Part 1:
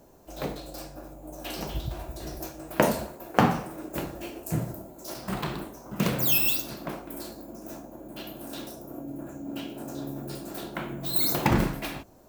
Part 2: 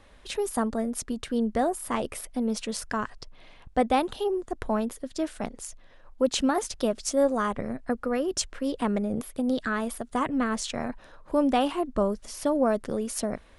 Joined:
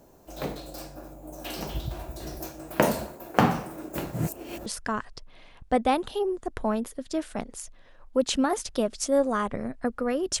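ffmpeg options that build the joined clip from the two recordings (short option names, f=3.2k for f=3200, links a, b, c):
-filter_complex "[0:a]apad=whole_dur=10.4,atrim=end=10.4,asplit=2[a][b];[a]atrim=end=4.132[c];[b]atrim=start=4.128:end=4.662,asetpts=PTS-STARTPTS,areverse[d];[1:a]atrim=start=2.708:end=8.45[e];[c][d]acrossfade=d=0.004:c1=hsin:c2=hsin[f];[f][e]acrossfade=d=0.004:c1=hsin:c2=hsin"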